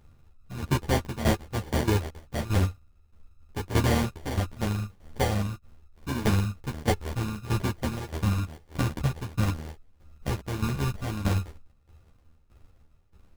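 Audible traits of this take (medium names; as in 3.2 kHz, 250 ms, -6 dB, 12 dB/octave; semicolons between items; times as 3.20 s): a buzz of ramps at a fixed pitch in blocks of 32 samples; tremolo saw down 1.6 Hz, depth 80%; aliases and images of a low sample rate 1.3 kHz, jitter 0%; a shimmering, thickened sound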